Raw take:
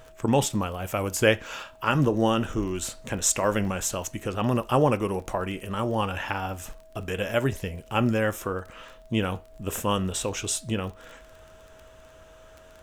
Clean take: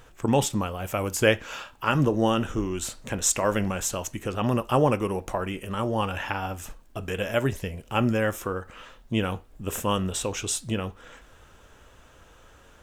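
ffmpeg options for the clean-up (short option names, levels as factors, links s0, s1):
-af "adeclick=t=4,bandreject=f=640:w=30"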